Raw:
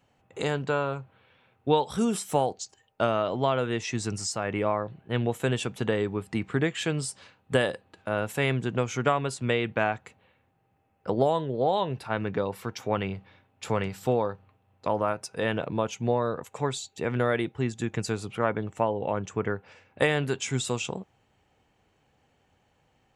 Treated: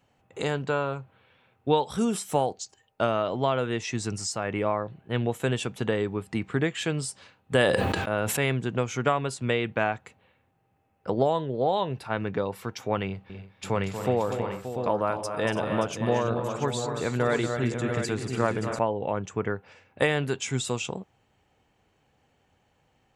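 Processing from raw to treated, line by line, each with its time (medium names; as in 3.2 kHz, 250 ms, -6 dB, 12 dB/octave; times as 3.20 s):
7.54–8.37 s: decay stretcher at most 22 dB/s
11.14–11.82 s: low-pass 7.9 kHz 24 dB/octave
13.06–18.79 s: multi-tap echo 236/286/329/577/692 ms -9/-12.5/-16/-11/-7.5 dB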